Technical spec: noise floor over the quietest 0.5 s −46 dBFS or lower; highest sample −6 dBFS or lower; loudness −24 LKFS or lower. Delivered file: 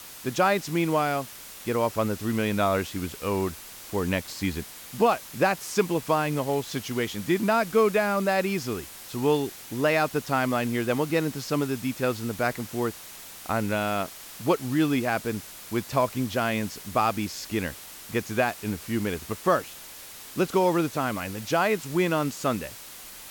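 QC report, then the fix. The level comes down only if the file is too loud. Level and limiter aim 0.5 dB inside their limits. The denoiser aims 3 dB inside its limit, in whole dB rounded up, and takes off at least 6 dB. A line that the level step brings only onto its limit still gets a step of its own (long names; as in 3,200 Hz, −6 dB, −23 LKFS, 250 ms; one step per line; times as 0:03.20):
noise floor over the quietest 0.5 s −43 dBFS: out of spec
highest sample −9.5 dBFS: in spec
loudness −27.0 LKFS: in spec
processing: broadband denoise 6 dB, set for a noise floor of −43 dBFS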